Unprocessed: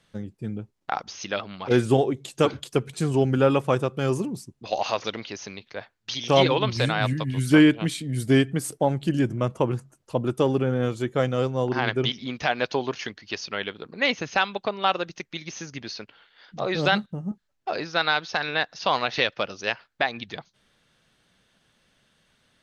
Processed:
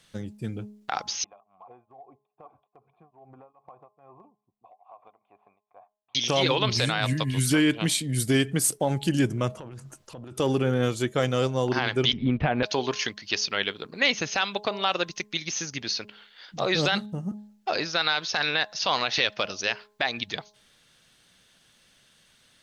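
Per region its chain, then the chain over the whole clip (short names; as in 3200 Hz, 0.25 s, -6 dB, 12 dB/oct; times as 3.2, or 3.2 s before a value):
1.24–6.15 vocal tract filter a + compressor 5:1, threshold -45 dBFS + beating tremolo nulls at 2.4 Hz
9.54–10.4 high shelf 7100 Hz -11 dB + transient shaper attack -9 dB, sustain +9 dB + compressor 16:1, threshold -37 dBFS
12.13–12.63 LPF 3000 Hz 24 dB/oct + tilt -4.5 dB/oct
whole clip: limiter -14 dBFS; high shelf 2700 Hz +10.5 dB; de-hum 209.4 Hz, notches 5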